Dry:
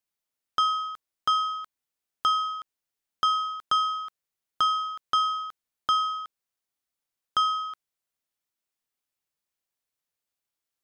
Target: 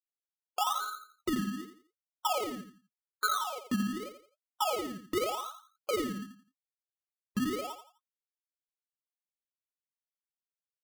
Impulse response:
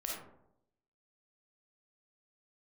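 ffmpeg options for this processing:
-filter_complex "[0:a]afftfilt=real='re*gte(hypot(re,im),0.0501)':imag='im*gte(hypot(re,im),0.0501)':win_size=1024:overlap=0.75,firequalizer=gain_entry='entry(140,0);entry(4200,-18);entry(7300,-29)':delay=0.05:min_phase=1,flanger=delay=6.8:depth=5:regen=39:speed=1.4:shape=triangular,acrusher=samples=23:mix=1:aa=0.000001:lfo=1:lforange=13.8:lforate=0.85,asplit=2[link_01][link_02];[link_02]aecho=0:1:85|170|255:0.335|0.104|0.0322[link_03];[link_01][link_03]amix=inputs=2:normalize=0,volume=2dB"

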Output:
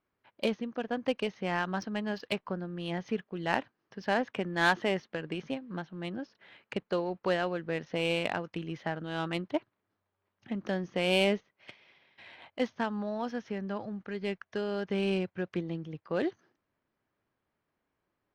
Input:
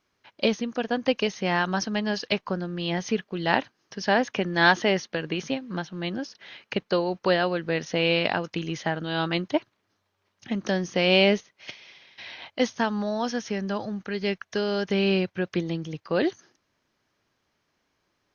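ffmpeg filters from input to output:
ffmpeg -i in.wav -af "adynamicsmooth=sensitivity=1.5:basefreq=2500,volume=-6.5dB" out.wav

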